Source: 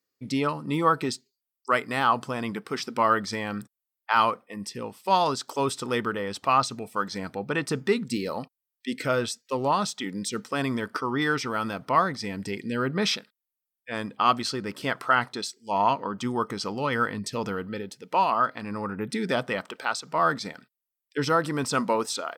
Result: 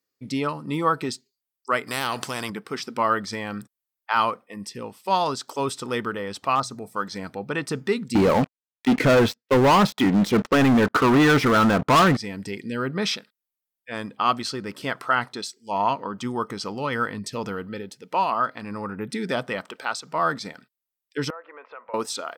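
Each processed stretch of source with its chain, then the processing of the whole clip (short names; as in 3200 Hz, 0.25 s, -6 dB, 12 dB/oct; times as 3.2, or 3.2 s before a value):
1.87–2.5 HPF 42 Hz + spectral compressor 2:1
6.55–6.95 bell 2800 Hz -12.5 dB + notches 60/120/180 Hz + hard clip -15 dBFS
8.15–12.17 tape spacing loss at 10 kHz 33 dB + sample leveller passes 5
21.3–21.94 elliptic band-pass 480–2400 Hz, stop band 60 dB + compressor 2.5:1, threshold -43 dBFS + air absorption 110 m
whole clip: dry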